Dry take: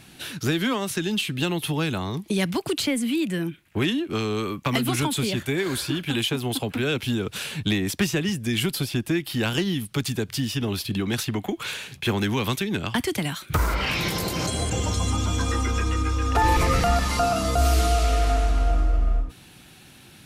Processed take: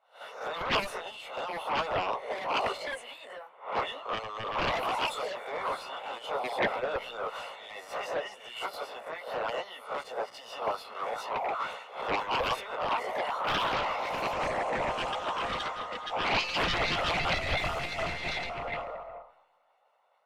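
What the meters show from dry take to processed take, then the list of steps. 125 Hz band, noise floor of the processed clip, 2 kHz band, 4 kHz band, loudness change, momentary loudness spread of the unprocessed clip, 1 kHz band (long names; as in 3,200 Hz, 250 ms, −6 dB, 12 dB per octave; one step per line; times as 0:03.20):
−20.5 dB, −62 dBFS, −3.5 dB, −7.0 dB, −7.5 dB, 6 LU, −2.0 dB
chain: peak hold with a rise ahead of every peak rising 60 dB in 0.68 s
elliptic high-pass filter 530 Hz, stop band 40 dB
chorus effect 0.6 Hz, delay 15.5 ms, depth 2.9 ms
brickwall limiter −22 dBFS, peak gain reduction 10 dB
soft clipping −23.5 dBFS, distortion −22 dB
Savitzky-Golay smoothing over 65 samples
sine wavefolder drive 11 dB, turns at −25 dBFS
harmonic and percussive parts rebalanced harmonic −13 dB
four-comb reverb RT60 2.8 s, combs from 26 ms, DRR 19 dB
multiband upward and downward expander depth 100%
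level +3 dB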